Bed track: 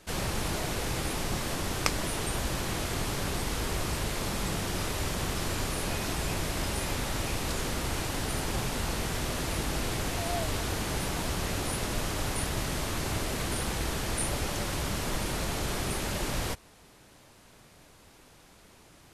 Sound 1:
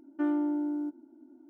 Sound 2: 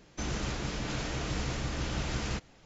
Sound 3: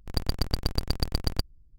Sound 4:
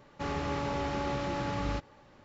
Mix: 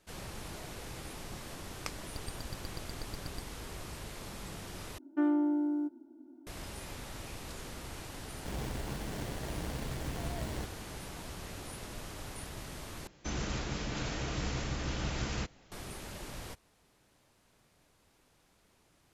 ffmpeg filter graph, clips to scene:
-filter_complex "[2:a]asplit=2[a][b];[0:a]volume=-12.5dB[c];[a]acrusher=samples=35:mix=1:aa=0.000001[d];[c]asplit=3[e][f][g];[e]atrim=end=4.984[h];[1:a]atrim=end=1.49[i];[f]atrim=start=6.466:end=13.074[j];[b]atrim=end=2.65,asetpts=PTS-STARTPTS,volume=-2dB[k];[g]atrim=start=15.716[l];[3:a]atrim=end=1.78,asetpts=PTS-STARTPTS,volume=-17.5dB,afade=t=in:d=0.004:c=hsin,afade=t=out:st=1.776:d=0.004:c=hsin,adelay=1990[m];[d]atrim=end=2.65,asetpts=PTS-STARTPTS,volume=-5.5dB,afade=t=in:d=0.004:c=hsin,afade=t=out:st=2.646:d=0.004:c=hsin,adelay=8270[n];[h][i]acrossfade=d=0.004:c1=hsin:c2=hsin[o];[o][j]acrossfade=d=0.004:c1=hsin:c2=hsin[p];[p][k]acrossfade=d=0.004:c1=hsin:c2=hsin[q];[q][l]acrossfade=d=0.004:c1=hsin:c2=hsin[r];[r][m][n]amix=inputs=3:normalize=0"

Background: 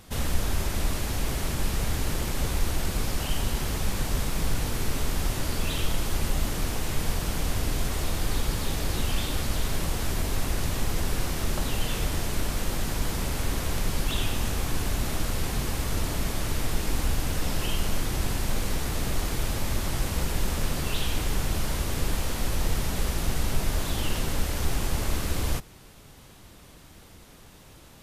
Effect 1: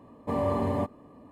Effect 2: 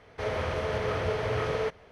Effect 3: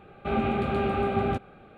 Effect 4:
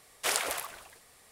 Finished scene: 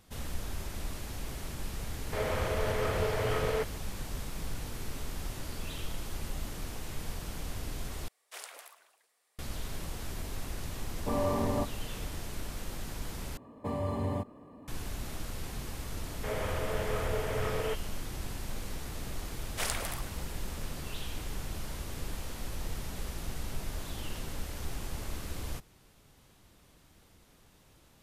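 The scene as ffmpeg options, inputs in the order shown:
-filter_complex "[2:a]asplit=2[a][b];[4:a]asplit=2[c][d];[1:a]asplit=2[e][f];[0:a]volume=-11dB[g];[c]highpass=430[h];[f]acrossover=split=150|3000[i][j][k];[j]acompressor=threshold=-32dB:ratio=6:attack=3.2:release=140:knee=2.83:detection=peak[l];[i][l][k]amix=inputs=3:normalize=0[m];[b]aresample=8000,aresample=44100[n];[g]asplit=3[o][p][q];[o]atrim=end=8.084[r];[h]atrim=end=1.31,asetpts=PTS-STARTPTS,volume=-16dB[s];[p]atrim=start=9.386:end=13.374[t];[m]atrim=end=1.31,asetpts=PTS-STARTPTS,volume=-0.5dB[u];[q]atrim=start=14.676[v];[a]atrim=end=1.91,asetpts=PTS-STARTPTS,volume=-2dB,afade=t=in:d=0.004:c=hsin,afade=t=out:st=1.906:d=0.004:c=hsin,adelay=1940[w];[e]atrim=end=1.31,asetpts=PTS-STARTPTS,volume=-3dB,afade=t=in:d=0.004:c=hsin,afade=t=out:st=1.306:d=0.004:c=hsin,adelay=10790[x];[n]atrim=end=1.91,asetpts=PTS-STARTPTS,volume=-4.5dB,afade=t=in:d=0.004:c=hsin,afade=t=out:st=1.906:d=0.004:c=hsin,adelay=16050[y];[d]atrim=end=1.31,asetpts=PTS-STARTPTS,volume=-5dB,afade=t=in:d=0.004:c=hsin,afade=t=out:st=1.306:d=0.004:c=hsin,adelay=19340[z];[r][s]acrossfade=d=0.004:c1=hsin:c2=hsin[aa];[aa][t]acrossfade=d=0.004:c1=hsin:c2=hsin[ab];[ab][u]acrossfade=d=0.004:c1=hsin:c2=hsin[ac];[ac][v]acrossfade=d=0.004:c1=hsin:c2=hsin[ad];[ad][w][x][y][z]amix=inputs=5:normalize=0"

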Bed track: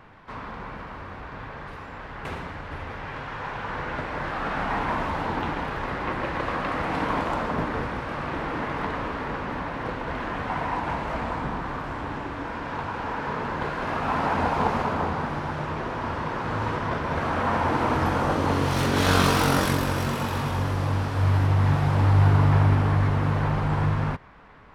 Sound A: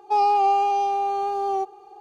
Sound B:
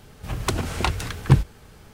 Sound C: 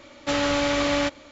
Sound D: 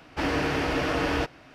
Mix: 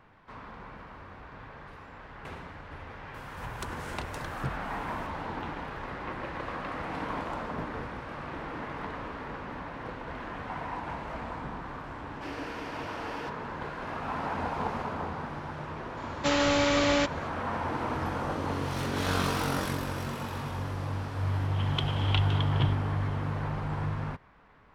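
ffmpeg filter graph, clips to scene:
-filter_complex "[2:a]asplit=2[a][b];[0:a]volume=-8.5dB[c];[a]acompressor=threshold=-46dB:ratio=2:attack=32:release=120:knee=1:detection=peak[d];[4:a]highpass=270[e];[b]lowpass=f=3.2k:t=q:w=13[f];[d]atrim=end=1.93,asetpts=PTS-STARTPTS,volume=-3.5dB,afade=t=in:d=0.004:c=hsin,afade=t=out:st=1.926:d=0.004:c=hsin,adelay=3140[g];[e]atrim=end=1.54,asetpts=PTS-STARTPTS,volume=-13dB,afade=t=in:d=0.004:c=hsin,afade=t=out:st=1.536:d=0.004:c=hsin,adelay=12040[h];[3:a]atrim=end=1.31,asetpts=PTS-STARTPTS,volume=-2dB,afade=t=in:d=0.004:c=hsin,afade=t=out:st=1.306:d=0.004:c=hsin,adelay=15970[i];[f]atrim=end=1.93,asetpts=PTS-STARTPTS,volume=-14dB,afade=t=in:d=0.004:c=hsin,afade=t=out:st=1.926:d=0.004:c=hsin,adelay=21300[j];[c][g][h][i][j]amix=inputs=5:normalize=0"

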